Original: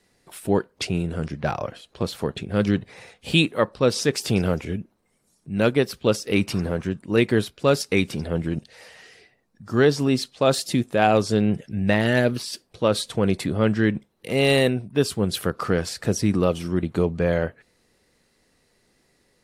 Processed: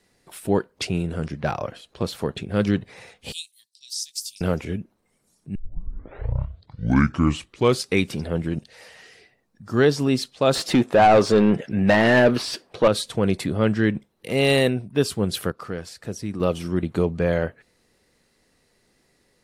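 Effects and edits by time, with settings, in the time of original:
3.32–4.41 s: inverse Chebyshev high-pass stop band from 1.4 kHz, stop band 60 dB
5.55 s: tape start 2.43 s
10.55–12.88 s: overdrive pedal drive 22 dB, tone 1.3 kHz, clips at -5.5 dBFS
15.03–16.89 s: dip -9 dB, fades 0.49 s logarithmic

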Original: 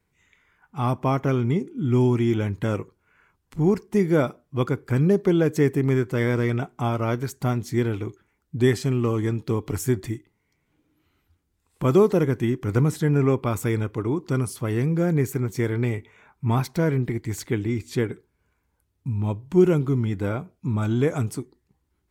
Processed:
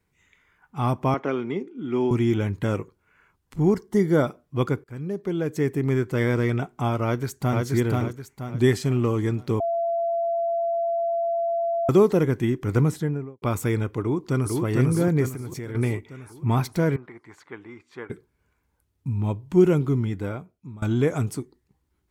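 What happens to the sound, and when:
1.14–2.11 s: three-band isolator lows -23 dB, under 230 Hz, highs -19 dB, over 4.8 kHz
3.73–4.26 s: Butterworth band-stop 2.5 kHz, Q 4.2
4.84–6.18 s: fade in, from -19 dB
7.04–7.64 s: echo throw 480 ms, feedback 40%, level -2 dB
9.60–11.89 s: bleep 677 Hz -21.5 dBFS
12.81–13.42 s: studio fade out
14.00–14.63 s: echo throw 450 ms, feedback 55%, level -2 dB
15.28–15.75 s: compression, threshold -30 dBFS
16.96–18.10 s: band-pass filter 1.1 kHz, Q 1.9
19.92–20.82 s: fade out, to -21 dB

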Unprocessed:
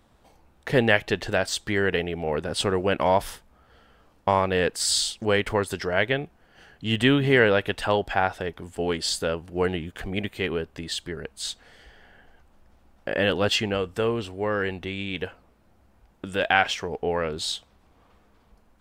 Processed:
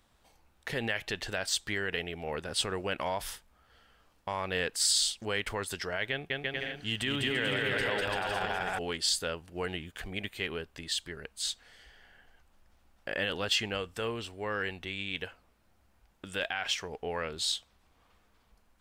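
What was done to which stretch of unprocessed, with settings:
6.10–8.79 s: bouncing-ball echo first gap 200 ms, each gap 0.7×, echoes 6, each echo -2 dB
whole clip: bass shelf 83 Hz +6 dB; peak limiter -14.5 dBFS; tilt shelf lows -5.5 dB, about 1.1 kHz; trim -6.5 dB

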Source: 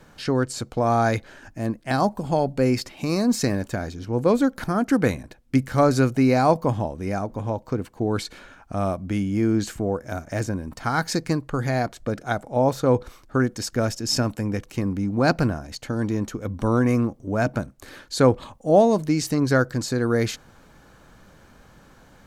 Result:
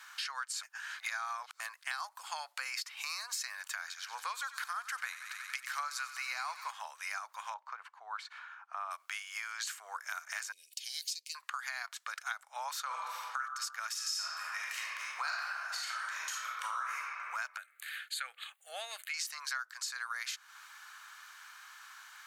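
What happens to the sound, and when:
0.63–1.60 s: reverse
3.78–6.71 s: feedback echo behind a high-pass 92 ms, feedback 78%, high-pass 1.5 kHz, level -13 dB
7.54–8.91 s: band-pass filter 740 Hz, Q 1.1
10.52–11.35 s: elliptic band-stop 450–2900 Hz, stop band 60 dB
12.86–13.39 s: reverb throw, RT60 1.1 s, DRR -3.5 dB
13.91–16.96 s: reverb throw, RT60 1.3 s, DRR -5.5 dB
17.57–19.14 s: static phaser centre 2.4 kHz, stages 4
whole clip: steep high-pass 1.1 kHz 36 dB/octave; compression 6:1, threshold -42 dBFS; trim +5.5 dB

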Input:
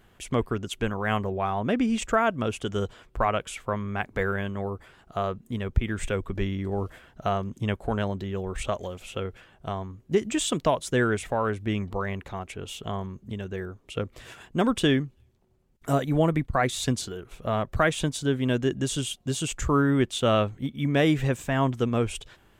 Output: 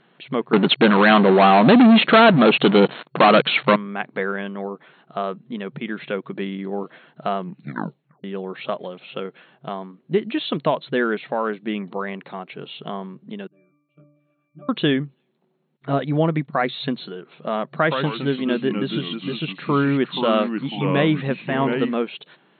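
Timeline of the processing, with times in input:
0.53–3.76 s: waveshaping leveller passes 5
7.39 s: tape stop 0.85 s
13.47–14.69 s: pitch-class resonator D, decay 0.77 s
17.72–21.95 s: ever faster or slower copies 106 ms, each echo -3 st, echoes 2, each echo -6 dB
whole clip: FFT band-pass 130–4300 Hz; trim +3 dB

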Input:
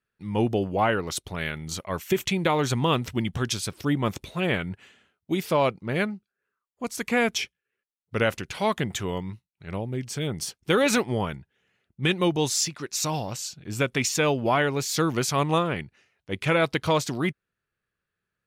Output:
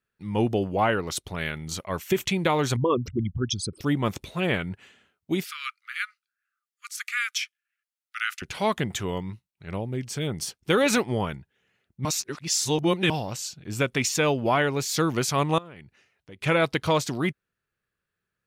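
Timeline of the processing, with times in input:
2.76–3.81 s: resonances exaggerated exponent 3
5.44–8.42 s: Chebyshev high-pass 1.2 kHz, order 8
12.05–13.10 s: reverse
15.58–16.43 s: compression 4:1, threshold -43 dBFS

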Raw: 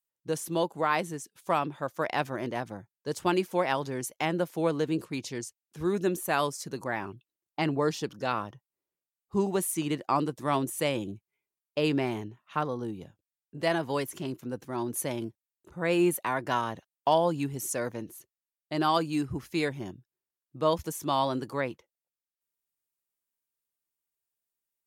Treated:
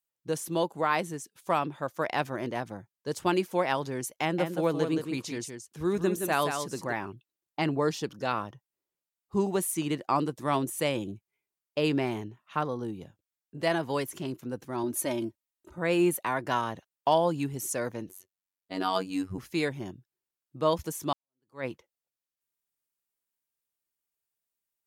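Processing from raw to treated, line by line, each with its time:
4.21–6.93 s: delay 170 ms -6.5 dB
14.83–15.78 s: comb 3.2 ms
18.09–19.38 s: robot voice 93.8 Hz
21.13–21.65 s: fade in exponential

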